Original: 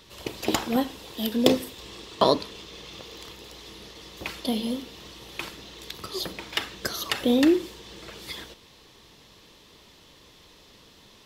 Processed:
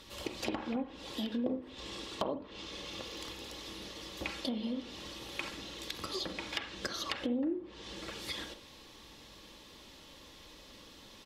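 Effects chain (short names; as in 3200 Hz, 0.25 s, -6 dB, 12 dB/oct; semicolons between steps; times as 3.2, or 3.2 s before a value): treble ducked by the level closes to 890 Hz, closed at -18.5 dBFS; comb 3.6 ms, depth 34%; compressor 4:1, threshold -33 dBFS, peak gain reduction 16.5 dB; on a send: reverb, pre-delay 42 ms, DRR 10.5 dB; on the sum: gain -1.5 dB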